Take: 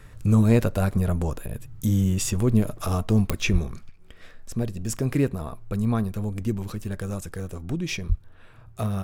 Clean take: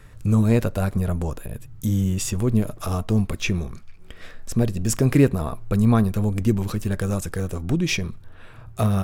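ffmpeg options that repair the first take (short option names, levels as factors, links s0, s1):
-filter_complex "[0:a]adeclick=t=4,asplit=3[s0][s1][s2];[s0]afade=t=out:st=3.52:d=0.02[s3];[s1]highpass=f=140:w=0.5412,highpass=f=140:w=1.3066,afade=t=in:st=3.52:d=0.02,afade=t=out:st=3.64:d=0.02[s4];[s2]afade=t=in:st=3.64:d=0.02[s5];[s3][s4][s5]amix=inputs=3:normalize=0,asplit=3[s6][s7][s8];[s6]afade=t=out:st=8.08:d=0.02[s9];[s7]highpass=f=140:w=0.5412,highpass=f=140:w=1.3066,afade=t=in:st=8.08:d=0.02,afade=t=out:st=8.2:d=0.02[s10];[s8]afade=t=in:st=8.2:d=0.02[s11];[s9][s10][s11]amix=inputs=3:normalize=0,asetnsamples=n=441:p=0,asendcmd='3.89 volume volume 6.5dB',volume=1"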